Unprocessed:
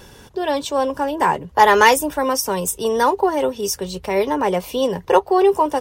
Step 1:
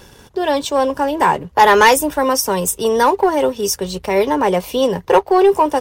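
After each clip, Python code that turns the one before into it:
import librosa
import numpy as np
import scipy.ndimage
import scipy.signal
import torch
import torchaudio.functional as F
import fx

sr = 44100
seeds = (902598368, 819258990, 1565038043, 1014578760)

y = fx.leveller(x, sr, passes=1)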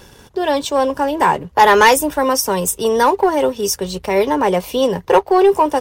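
y = x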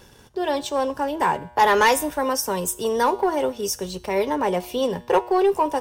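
y = fx.comb_fb(x, sr, f0_hz=120.0, decay_s=0.74, harmonics='all', damping=0.0, mix_pct=50)
y = y * librosa.db_to_amplitude(-1.5)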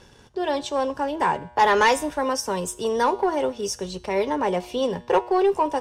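y = scipy.signal.sosfilt(scipy.signal.butter(2, 7700.0, 'lowpass', fs=sr, output='sos'), x)
y = y * librosa.db_to_amplitude(-1.0)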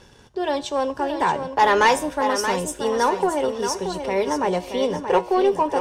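y = fx.echo_feedback(x, sr, ms=628, feedback_pct=30, wet_db=-8)
y = y * librosa.db_to_amplitude(1.0)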